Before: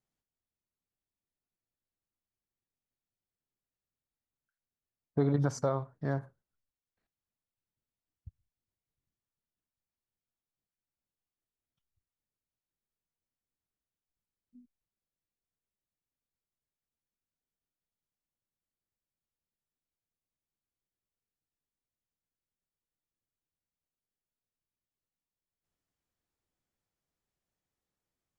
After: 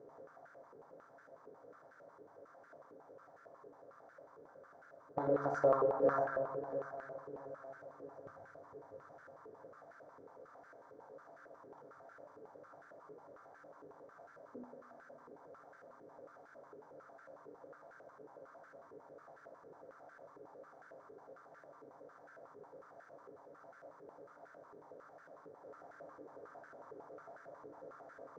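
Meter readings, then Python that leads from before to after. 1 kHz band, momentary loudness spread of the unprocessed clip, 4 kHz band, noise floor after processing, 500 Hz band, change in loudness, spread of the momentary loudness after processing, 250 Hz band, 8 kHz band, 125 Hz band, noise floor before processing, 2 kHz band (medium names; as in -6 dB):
+5.0 dB, 8 LU, under -10 dB, -62 dBFS, +3.5 dB, -7.5 dB, 19 LU, -8.0 dB, under -15 dB, -16.5 dB, under -85 dBFS, +4.0 dB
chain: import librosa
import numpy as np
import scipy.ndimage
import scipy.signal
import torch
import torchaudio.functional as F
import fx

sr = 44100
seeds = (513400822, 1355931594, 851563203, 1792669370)

y = fx.bin_compress(x, sr, power=0.4)
y = fx.rider(y, sr, range_db=3, speed_s=0.5)
y = fx.echo_feedback(y, sr, ms=651, feedback_pct=51, wet_db=-12.5)
y = fx.rev_fdn(y, sr, rt60_s=2.4, lf_ratio=0.85, hf_ratio=0.3, size_ms=60.0, drr_db=0.0)
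y = fx.filter_held_bandpass(y, sr, hz=11.0, low_hz=430.0, high_hz=1500.0)
y = F.gain(torch.from_numpy(y), 4.5).numpy()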